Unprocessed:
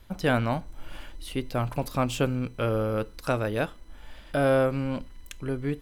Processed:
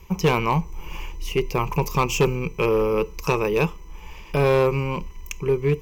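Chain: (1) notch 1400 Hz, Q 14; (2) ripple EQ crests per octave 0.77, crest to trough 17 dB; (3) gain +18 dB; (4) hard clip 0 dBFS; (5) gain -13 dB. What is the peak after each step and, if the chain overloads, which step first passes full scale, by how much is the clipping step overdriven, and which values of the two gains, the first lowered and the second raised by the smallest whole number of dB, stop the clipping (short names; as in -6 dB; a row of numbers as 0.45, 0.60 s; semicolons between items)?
-11.0, -9.0, +9.0, 0.0, -13.0 dBFS; step 3, 9.0 dB; step 3 +9 dB, step 5 -4 dB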